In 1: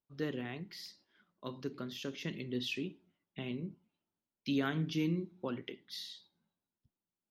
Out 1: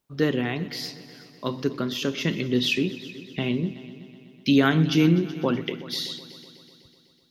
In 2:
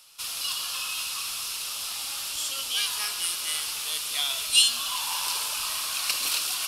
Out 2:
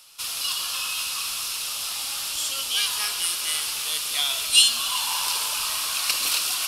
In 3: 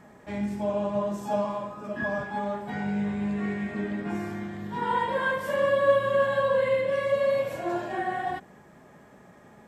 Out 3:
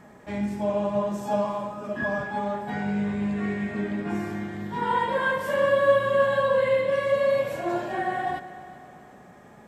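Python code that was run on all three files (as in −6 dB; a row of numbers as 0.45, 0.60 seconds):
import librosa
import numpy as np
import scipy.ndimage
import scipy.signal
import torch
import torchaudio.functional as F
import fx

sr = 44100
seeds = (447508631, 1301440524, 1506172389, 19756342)

y = fx.echo_heads(x, sr, ms=125, heads='all three', feedback_pct=54, wet_db=-21)
y = y * 10.0 ** (-26 / 20.0) / np.sqrt(np.mean(np.square(y)))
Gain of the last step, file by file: +14.5, +3.0, +2.0 decibels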